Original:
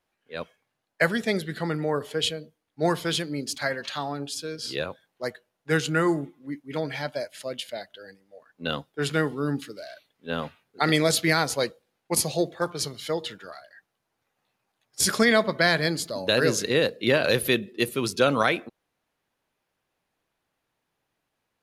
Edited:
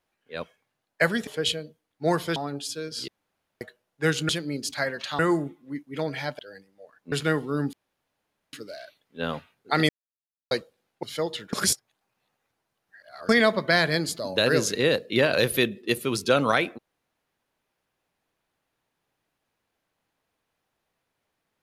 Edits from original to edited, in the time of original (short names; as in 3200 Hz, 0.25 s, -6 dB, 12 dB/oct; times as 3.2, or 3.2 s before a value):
1.27–2.04 cut
3.13–4.03 move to 5.96
4.75–5.28 room tone
7.16–7.92 cut
8.65–9.01 cut
9.62 insert room tone 0.80 s
10.98–11.6 mute
12.12–12.94 cut
13.44–15.2 reverse